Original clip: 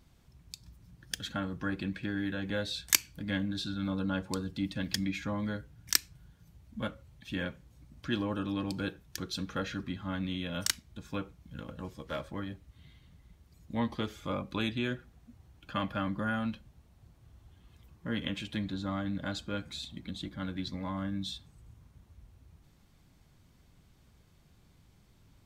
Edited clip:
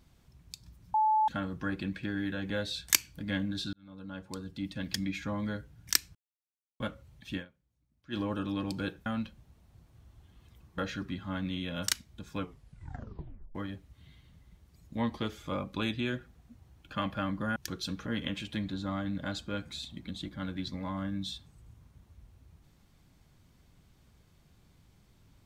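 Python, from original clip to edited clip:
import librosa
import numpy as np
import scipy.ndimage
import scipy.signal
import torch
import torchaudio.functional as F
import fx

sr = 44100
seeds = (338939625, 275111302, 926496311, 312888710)

y = fx.edit(x, sr, fx.bleep(start_s=0.94, length_s=0.34, hz=866.0, db=-22.5),
    fx.fade_in_span(start_s=3.73, length_s=1.91, curve='qsin'),
    fx.silence(start_s=6.15, length_s=0.65),
    fx.fade_down_up(start_s=7.36, length_s=0.81, db=-21.5, fade_s=0.12, curve='qua'),
    fx.swap(start_s=9.06, length_s=0.5, other_s=16.34, other_length_s=1.72),
    fx.tape_stop(start_s=11.16, length_s=1.17), tone=tone)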